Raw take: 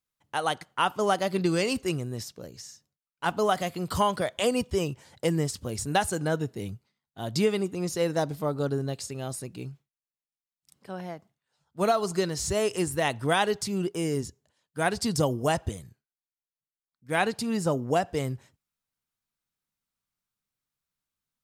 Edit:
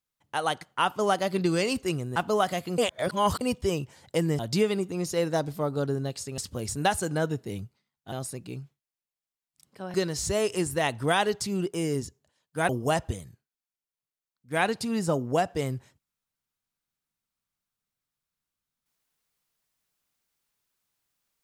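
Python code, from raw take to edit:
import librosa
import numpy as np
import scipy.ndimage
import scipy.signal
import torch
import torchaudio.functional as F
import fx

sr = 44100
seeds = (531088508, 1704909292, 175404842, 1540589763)

y = fx.edit(x, sr, fx.cut(start_s=2.16, length_s=1.09),
    fx.reverse_span(start_s=3.87, length_s=0.63),
    fx.move(start_s=5.48, length_s=1.74, to_s=9.21),
    fx.cut(start_s=11.03, length_s=1.12),
    fx.cut(start_s=14.9, length_s=0.37), tone=tone)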